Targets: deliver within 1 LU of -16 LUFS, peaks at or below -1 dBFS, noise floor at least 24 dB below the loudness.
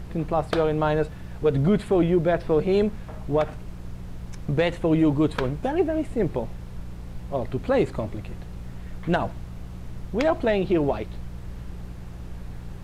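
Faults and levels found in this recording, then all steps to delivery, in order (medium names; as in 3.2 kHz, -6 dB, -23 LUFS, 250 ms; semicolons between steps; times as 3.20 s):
hum 60 Hz; highest harmonic 180 Hz; hum level -36 dBFS; noise floor -38 dBFS; noise floor target -49 dBFS; loudness -24.5 LUFS; peak level -10.5 dBFS; loudness target -16.0 LUFS
-> de-hum 60 Hz, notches 3; noise print and reduce 11 dB; trim +8.5 dB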